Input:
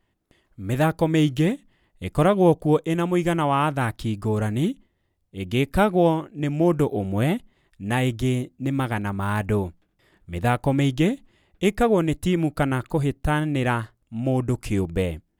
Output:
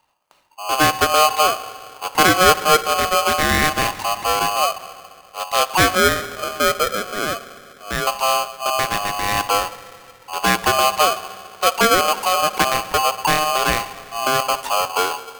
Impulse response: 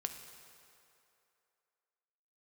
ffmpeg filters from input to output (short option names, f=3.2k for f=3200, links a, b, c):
-filter_complex "[0:a]asettb=1/sr,asplit=3[a][b][c];[a]atrim=end=5.954[d];[b]atrim=start=5.95:end=8.07,asetpts=PTS-STARTPTS,afade=t=in:d=0.004:c=qsin,afade=t=out:st=2.116:d=0.004:c=qsin,asuperpass=centerf=570:order=4:qfactor=0.72[e];[c]atrim=start=8.066[f];[d][e]acrossfade=d=0.004:c1=hsin:c2=qsin[g];[g][f]acrossfade=d=0.004:c1=qsin:c2=hsin,asplit=2[h][i];[1:a]atrim=start_sample=2205[j];[i][j]afir=irnorm=-1:irlink=0,volume=1.5dB[k];[h][k]amix=inputs=2:normalize=0,aeval=exprs='val(0)*sgn(sin(2*PI*920*n/s))':c=same,volume=-2.5dB"